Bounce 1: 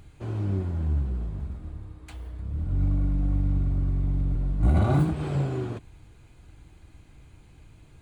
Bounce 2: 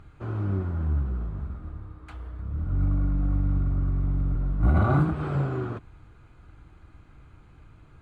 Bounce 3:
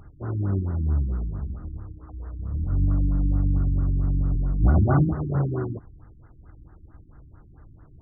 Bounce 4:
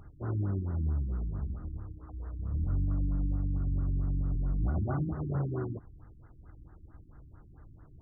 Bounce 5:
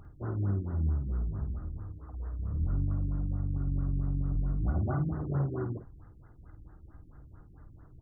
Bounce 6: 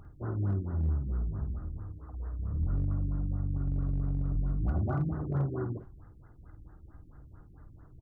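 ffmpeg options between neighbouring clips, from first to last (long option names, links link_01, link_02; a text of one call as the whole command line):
ffmpeg -i in.wav -af "lowpass=frequency=2100:poles=1,equalizer=frequency=1300:width_type=o:width=0.55:gain=11" out.wav
ffmpeg -i in.wav -af "afftfilt=real='re*lt(b*sr/1024,340*pow(2100/340,0.5+0.5*sin(2*PI*4.5*pts/sr)))':imag='im*lt(b*sr/1024,340*pow(2100/340,0.5+0.5*sin(2*PI*4.5*pts/sr)))':win_size=1024:overlap=0.75,volume=2.5dB" out.wav
ffmpeg -i in.wav -af "alimiter=limit=-19dB:level=0:latency=1:release=425,volume=-4dB" out.wav
ffmpeg -i in.wav -filter_complex "[0:a]asplit=2[link_01][link_02];[link_02]adelay=50,volume=-8.5dB[link_03];[link_01][link_03]amix=inputs=2:normalize=0" out.wav
ffmpeg -i in.wav -filter_complex "[0:a]asoftclip=type=hard:threshold=-22.5dB,asplit=2[link_01][link_02];[link_02]adelay=220,highpass=300,lowpass=3400,asoftclip=type=hard:threshold=-31.5dB,volume=-26dB[link_03];[link_01][link_03]amix=inputs=2:normalize=0" out.wav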